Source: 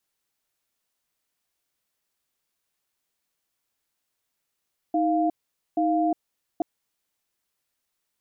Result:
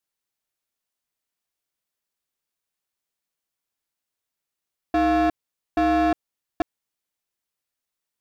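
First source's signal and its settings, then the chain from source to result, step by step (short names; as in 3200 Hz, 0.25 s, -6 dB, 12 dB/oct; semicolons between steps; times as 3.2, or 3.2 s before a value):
cadence 315 Hz, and 698 Hz, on 0.36 s, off 0.47 s, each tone -22.5 dBFS 1.68 s
sample leveller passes 3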